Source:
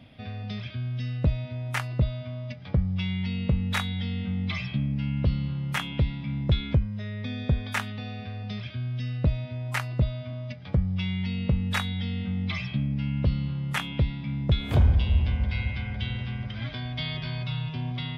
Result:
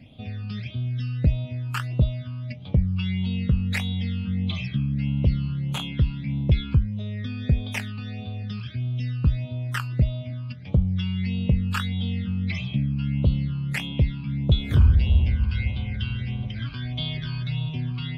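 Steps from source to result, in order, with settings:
all-pass phaser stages 12, 1.6 Hz, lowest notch 620–1,800 Hz
level +2.5 dB

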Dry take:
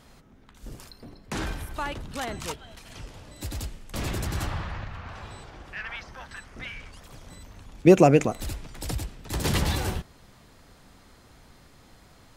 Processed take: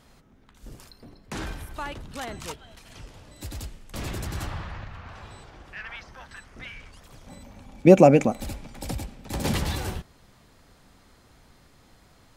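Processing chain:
0:07.26–0:09.54: hollow resonant body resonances 230/560/790/2,300 Hz, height 11 dB → 8 dB, ringing for 35 ms
level −2.5 dB

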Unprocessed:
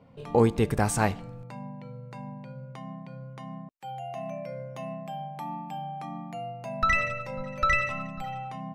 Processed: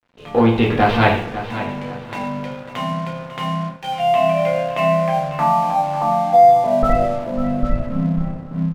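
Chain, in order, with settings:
stylus tracing distortion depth 0.11 ms
convolution reverb, pre-delay 3 ms, DRR −3 dB
low-pass filter sweep 3,300 Hz → 240 Hz, 0:04.44–0:07.68
low-shelf EQ 110 Hz −6.5 dB
in parallel at −10 dB: hard clipping −21.5 dBFS, distortion −7 dB
on the sum: Savitzky-Golay smoothing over 15 samples
dead-zone distortion −46.5 dBFS
automatic gain control gain up to 11.5 dB
repeating echo 547 ms, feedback 30%, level −12.5 dB

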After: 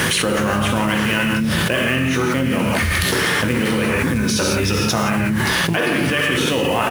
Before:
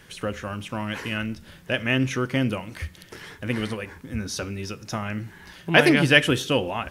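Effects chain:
one scale factor per block 5 bits
high-pass filter 100 Hz 12 dB per octave
high-shelf EQ 4,500 Hz −2 dB
reverb whose tail is shaped and stops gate 200 ms flat, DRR −0.5 dB
speech leveller within 3 dB 2 s
pitch-shifted copies added −7 semitones −9 dB
parametric band 9,800 Hz +6.5 dB 0.23 octaves
envelope flattener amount 100%
level −7.5 dB

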